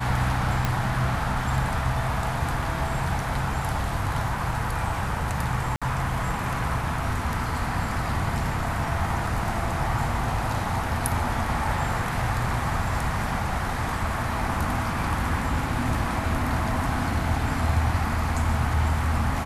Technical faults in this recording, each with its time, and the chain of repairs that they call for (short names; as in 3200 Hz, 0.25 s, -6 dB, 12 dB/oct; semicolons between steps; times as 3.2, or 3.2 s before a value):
0.65 pop
5.76–5.82 gap 56 ms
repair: de-click; interpolate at 5.76, 56 ms